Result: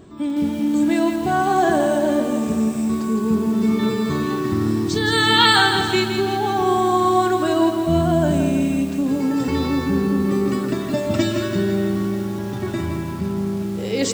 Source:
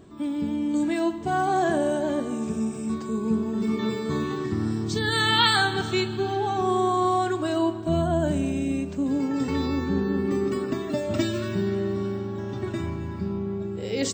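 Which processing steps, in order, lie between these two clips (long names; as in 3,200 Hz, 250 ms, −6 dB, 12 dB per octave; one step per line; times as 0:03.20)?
feedback echo at a low word length 166 ms, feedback 55%, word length 7 bits, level −6.5 dB
level +5 dB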